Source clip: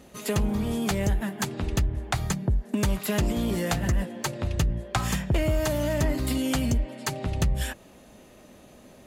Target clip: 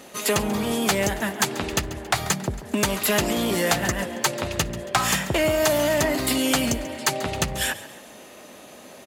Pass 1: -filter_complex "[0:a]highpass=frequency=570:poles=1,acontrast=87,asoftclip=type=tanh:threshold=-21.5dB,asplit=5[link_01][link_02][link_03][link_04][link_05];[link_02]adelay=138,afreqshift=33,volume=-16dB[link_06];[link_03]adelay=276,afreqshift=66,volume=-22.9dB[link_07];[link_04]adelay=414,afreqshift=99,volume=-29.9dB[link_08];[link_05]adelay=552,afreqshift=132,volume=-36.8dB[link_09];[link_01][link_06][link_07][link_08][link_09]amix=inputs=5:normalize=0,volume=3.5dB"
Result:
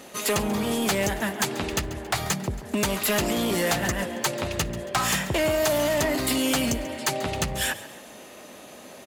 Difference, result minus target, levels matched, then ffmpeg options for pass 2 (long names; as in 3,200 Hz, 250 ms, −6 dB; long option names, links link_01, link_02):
soft clipping: distortion +8 dB
-filter_complex "[0:a]highpass=frequency=570:poles=1,acontrast=87,asoftclip=type=tanh:threshold=-14dB,asplit=5[link_01][link_02][link_03][link_04][link_05];[link_02]adelay=138,afreqshift=33,volume=-16dB[link_06];[link_03]adelay=276,afreqshift=66,volume=-22.9dB[link_07];[link_04]adelay=414,afreqshift=99,volume=-29.9dB[link_08];[link_05]adelay=552,afreqshift=132,volume=-36.8dB[link_09];[link_01][link_06][link_07][link_08][link_09]amix=inputs=5:normalize=0,volume=3.5dB"